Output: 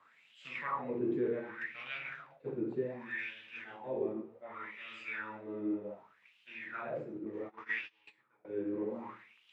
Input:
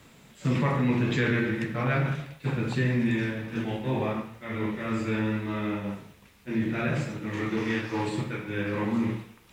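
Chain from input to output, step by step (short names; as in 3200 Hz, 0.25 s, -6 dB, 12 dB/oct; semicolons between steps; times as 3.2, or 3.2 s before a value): wah 0.66 Hz 340–3000 Hz, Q 5.4; 7.25–8.45 gate -44 dBFS, range -24 dB; gain +2 dB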